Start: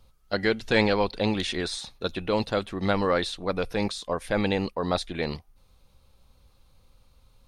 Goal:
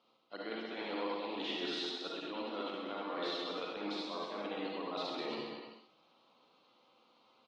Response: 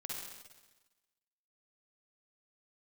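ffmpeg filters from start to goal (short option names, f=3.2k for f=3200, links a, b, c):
-filter_complex "[0:a]equalizer=f=1.3k:t=o:w=0.51:g=6.5,areverse,acompressor=threshold=-33dB:ratio=16,areverse,highpass=f=240:w=0.5412,highpass=f=240:w=1.3066,equalizer=f=310:t=q:w=4:g=7,equalizer=f=710:t=q:w=4:g=5,equalizer=f=1k:t=q:w=4:g=4,equalizer=f=1.6k:t=q:w=4:g=-6,equalizer=f=3k:t=q:w=4:g=7,lowpass=f=5k:w=0.5412,lowpass=f=5k:w=1.3066,aecho=1:1:130|234|317.2|383.8|437:0.631|0.398|0.251|0.158|0.1[a];[1:a]atrim=start_sample=2205,atrim=end_sample=3969,asetrate=40572,aresample=44100[b];[a][b]afir=irnorm=-1:irlink=0,volume=-3.5dB" -ar 44100 -c:a aac -b:a 32k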